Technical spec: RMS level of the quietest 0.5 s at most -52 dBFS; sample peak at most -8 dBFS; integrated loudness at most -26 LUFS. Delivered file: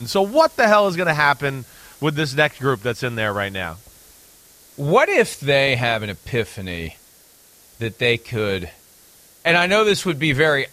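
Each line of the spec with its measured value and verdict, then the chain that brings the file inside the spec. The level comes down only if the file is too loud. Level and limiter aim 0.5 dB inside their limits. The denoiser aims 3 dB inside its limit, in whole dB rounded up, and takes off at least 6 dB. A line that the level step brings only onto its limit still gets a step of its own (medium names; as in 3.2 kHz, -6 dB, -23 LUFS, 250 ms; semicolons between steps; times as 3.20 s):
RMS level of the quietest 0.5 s -51 dBFS: fail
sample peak -2.5 dBFS: fail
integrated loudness -19.0 LUFS: fail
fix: trim -7.5 dB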